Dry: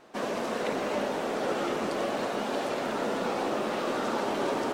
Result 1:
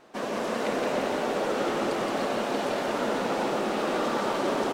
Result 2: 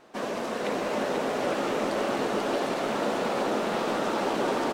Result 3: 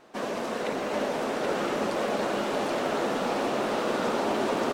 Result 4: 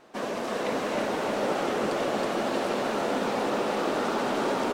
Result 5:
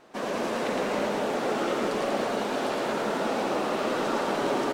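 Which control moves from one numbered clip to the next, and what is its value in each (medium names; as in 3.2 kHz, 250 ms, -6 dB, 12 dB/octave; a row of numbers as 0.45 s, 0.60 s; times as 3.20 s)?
bouncing-ball echo, first gap: 170 ms, 490 ms, 780 ms, 320 ms, 110 ms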